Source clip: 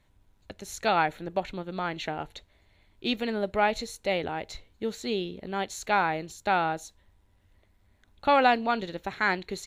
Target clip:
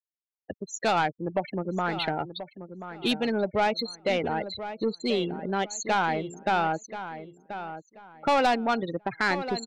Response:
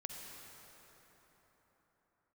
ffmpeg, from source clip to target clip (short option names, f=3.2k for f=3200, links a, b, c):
-filter_complex "[0:a]highpass=f=79:w=0.5412,highpass=f=79:w=1.3066,afftfilt=real='re*gte(hypot(re,im),0.0251)':imag='im*gte(hypot(re,im),0.0251)':win_size=1024:overlap=0.75,adynamicequalizer=threshold=0.00631:dfrequency=4900:dqfactor=1.2:tfrequency=4900:tqfactor=1.2:attack=5:release=100:ratio=0.375:range=2:mode=boostabove:tftype=bell,asplit=2[a][b];[b]acompressor=threshold=-33dB:ratio=5,volume=2.5dB[c];[a][c]amix=inputs=2:normalize=0,asoftclip=type=tanh:threshold=-17dB,asplit=2[d][e];[e]adelay=1033,lowpass=f=2.5k:p=1,volume=-11dB,asplit=2[f][g];[g]adelay=1033,lowpass=f=2.5k:p=1,volume=0.25,asplit=2[h][i];[i]adelay=1033,lowpass=f=2.5k:p=1,volume=0.25[j];[f][h][j]amix=inputs=3:normalize=0[k];[d][k]amix=inputs=2:normalize=0"